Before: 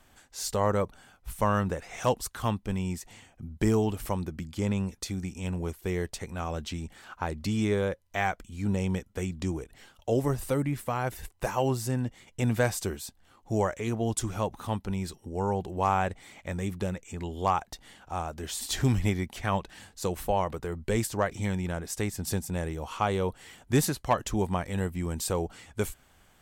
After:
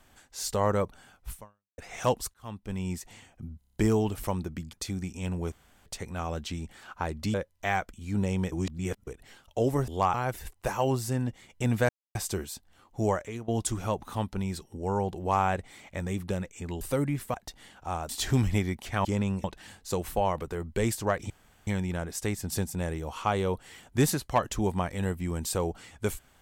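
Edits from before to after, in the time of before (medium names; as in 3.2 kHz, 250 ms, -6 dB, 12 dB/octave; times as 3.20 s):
1.34–1.78 s: fade out exponential
2.34–2.94 s: fade in
3.58 s: stutter 0.03 s, 7 plays
4.55–4.94 s: move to 19.56 s
5.73–6.07 s: room tone
7.55–7.85 s: delete
9.03–9.58 s: reverse
10.39–10.92 s: swap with 17.33–17.59 s
12.67 s: insert silence 0.26 s
13.64–14.00 s: fade out, to -15.5 dB
18.34–18.60 s: delete
21.42 s: insert room tone 0.37 s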